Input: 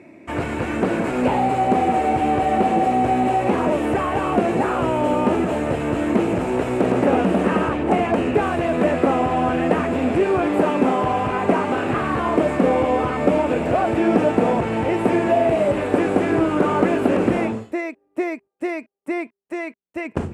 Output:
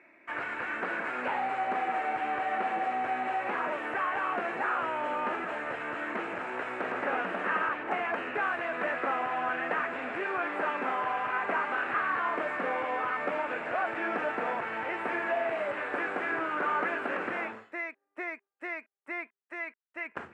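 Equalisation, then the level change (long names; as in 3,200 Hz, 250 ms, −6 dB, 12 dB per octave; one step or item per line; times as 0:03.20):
resonant band-pass 1,600 Hz, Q 2.2
0.0 dB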